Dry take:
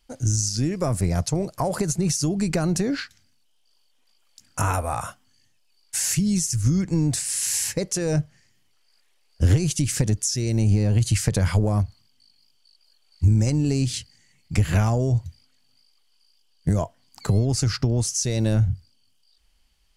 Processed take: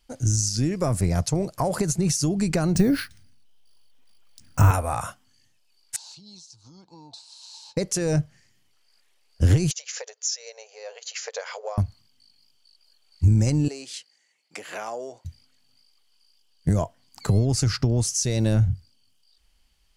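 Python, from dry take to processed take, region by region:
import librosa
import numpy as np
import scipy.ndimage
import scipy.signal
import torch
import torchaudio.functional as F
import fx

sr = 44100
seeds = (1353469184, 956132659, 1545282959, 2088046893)

y = fx.chain(x, sr, fx.resample_bad(factor=3, down='filtered', up='hold'),
    fx.low_shelf(hz=200.0, db=12.0), at=(2.75, 4.71))
y = fx.chain(y, sr, fx.double_bandpass(hz=1900.0, octaves=2.2),
    fx.air_absorb(metres=78.0), at=(5.96, 7.77))
y = fx.chain(y, sr, fx.brickwall_bandpass(low_hz=430.0, high_hz=7300.0),
    fx.upward_expand(threshold_db=-49.0, expansion=1.5), at=(9.71, 11.78))
y = fx.chain(y, sr, fx.ladder_highpass(hz=370.0, resonance_pct=20),
    fx.high_shelf(hz=12000.0, db=-11.0), at=(13.68, 15.25))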